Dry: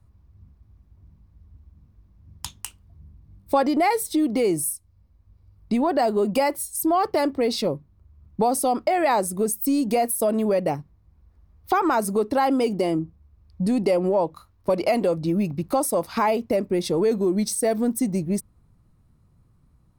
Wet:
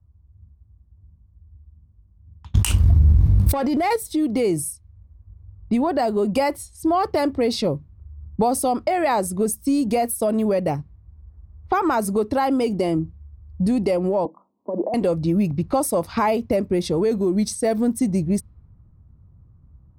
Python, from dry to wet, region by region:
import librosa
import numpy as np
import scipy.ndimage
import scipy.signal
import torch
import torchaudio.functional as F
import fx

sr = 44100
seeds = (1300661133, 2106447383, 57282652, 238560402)

y = fx.chain(x, sr, fx.leveller(passes=1),
    fx.env_flatten(amount_pct=100), at=(2.54, 3.96))
y = fx.chain(y, sr, fx.cheby1_bandpass(low_hz=200.0, high_hz=1000.0, order=4),
    fx.over_compress(threshold_db=-24.0, ratio=-1.0), at=(14.25, 14.94))
y = fx.env_lowpass(y, sr, base_hz=1200.0, full_db=-19.5)
y = fx.peak_eq(y, sr, hz=73.0, db=12.5, octaves=1.7)
y = fx.rider(y, sr, range_db=5, speed_s=0.5)
y = y * librosa.db_to_amplitude(-4.0)